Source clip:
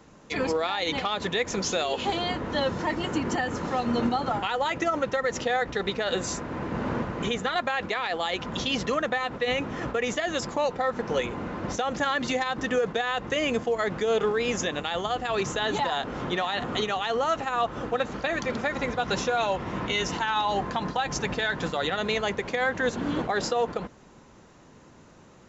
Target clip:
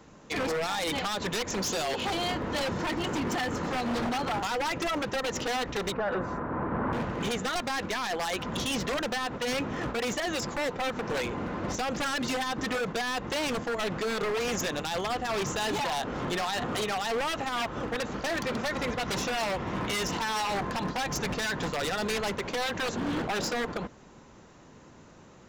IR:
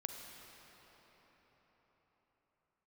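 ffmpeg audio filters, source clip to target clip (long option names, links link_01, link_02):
-filter_complex "[0:a]aeval=exprs='0.0596*(abs(mod(val(0)/0.0596+3,4)-2)-1)':channel_layout=same,asettb=1/sr,asplit=3[link_01][link_02][link_03];[link_01]atrim=end=5.924[link_04];[link_02]atrim=start=5.92:end=6.93,asetpts=PTS-STARTPTS,afade=type=in:duration=0.004:curve=qsin,afade=type=out:start_time=1.006:duration=0.004:curve=qsin,lowpass=frequency=1300:width_type=q:width=1.6[link_05];[link_03]atrim=start=6.926[link_06];[link_04][link_05]acrossfade=duration=0.004:curve1=hsin:curve2=qsin[link_07];[link_07][link_06]acrossfade=duration=0.004:curve1=qsin:curve2=hsin"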